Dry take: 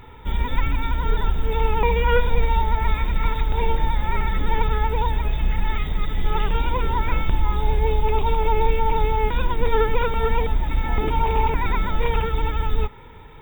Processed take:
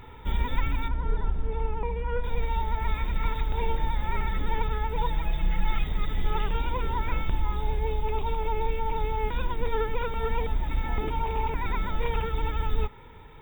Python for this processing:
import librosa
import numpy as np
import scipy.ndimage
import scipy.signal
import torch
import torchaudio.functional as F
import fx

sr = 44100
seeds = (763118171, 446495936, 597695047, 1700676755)

y = fx.comb(x, sr, ms=6.0, depth=0.89, at=(4.95, 5.84))
y = fx.rider(y, sr, range_db=5, speed_s=0.5)
y = fx.spacing_loss(y, sr, db_at_10k=36, at=(0.88, 2.24))
y = F.gain(torch.from_numpy(y), -7.0).numpy()